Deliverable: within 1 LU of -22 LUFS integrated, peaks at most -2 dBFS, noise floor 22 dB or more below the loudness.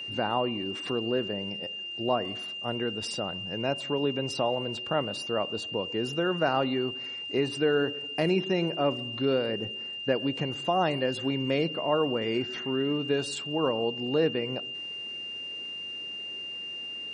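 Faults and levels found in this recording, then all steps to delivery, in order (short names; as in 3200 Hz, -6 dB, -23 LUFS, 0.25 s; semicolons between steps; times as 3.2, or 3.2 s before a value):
steady tone 2800 Hz; tone level -35 dBFS; loudness -29.5 LUFS; peak -12.5 dBFS; loudness target -22.0 LUFS
-> notch 2800 Hz, Q 30; gain +7.5 dB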